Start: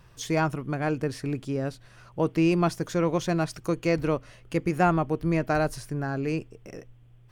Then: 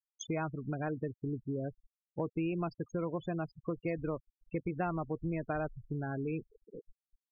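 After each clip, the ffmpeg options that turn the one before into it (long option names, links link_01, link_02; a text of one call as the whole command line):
ffmpeg -i in.wav -af "afftfilt=real='re*gte(hypot(re,im),0.0501)':imag='im*gte(hypot(re,im),0.0501)':win_size=1024:overlap=0.75,acompressor=threshold=-31dB:ratio=3,volume=-3dB" out.wav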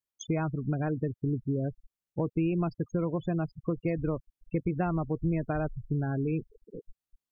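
ffmpeg -i in.wav -af "lowshelf=frequency=320:gain=9,volume=1dB" out.wav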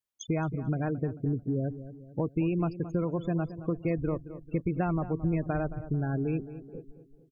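ffmpeg -i in.wav -filter_complex "[0:a]asplit=2[link_01][link_02];[link_02]adelay=221,lowpass=frequency=1500:poles=1,volume=-13dB,asplit=2[link_03][link_04];[link_04]adelay=221,lowpass=frequency=1500:poles=1,volume=0.48,asplit=2[link_05][link_06];[link_06]adelay=221,lowpass=frequency=1500:poles=1,volume=0.48,asplit=2[link_07][link_08];[link_08]adelay=221,lowpass=frequency=1500:poles=1,volume=0.48,asplit=2[link_09][link_10];[link_10]adelay=221,lowpass=frequency=1500:poles=1,volume=0.48[link_11];[link_01][link_03][link_05][link_07][link_09][link_11]amix=inputs=6:normalize=0" out.wav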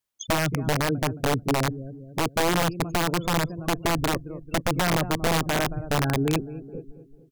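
ffmpeg -i in.wav -af "aeval=exprs='(mod(13.3*val(0)+1,2)-1)/13.3':channel_layout=same,volume=6dB" out.wav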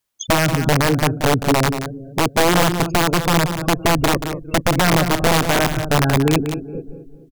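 ffmpeg -i in.wav -af "aecho=1:1:181:0.335,volume=7.5dB" out.wav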